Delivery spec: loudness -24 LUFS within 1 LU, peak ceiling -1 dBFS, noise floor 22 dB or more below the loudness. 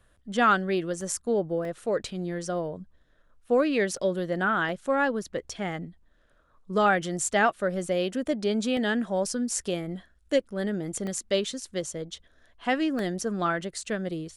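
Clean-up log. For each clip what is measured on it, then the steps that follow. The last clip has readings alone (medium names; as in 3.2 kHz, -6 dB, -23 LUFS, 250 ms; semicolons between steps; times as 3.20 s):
dropouts 8; longest dropout 1.6 ms; loudness -28.0 LUFS; peak level -10.5 dBFS; loudness target -24.0 LUFS
-> interpolate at 1.01/1.65/3.97/4.69/7.28/8.77/11.07/12.99 s, 1.6 ms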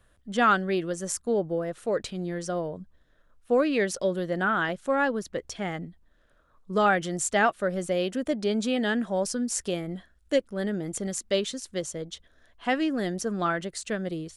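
dropouts 0; loudness -28.0 LUFS; peak level -10.5 dBFS; loudness target -24.0 LUFS
-> trim +4 dB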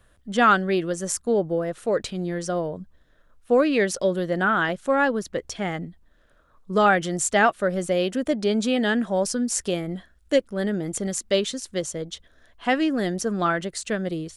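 loudness -24.0 LUFS; peak level -6.5 dBFS; noise floor -60 dBFS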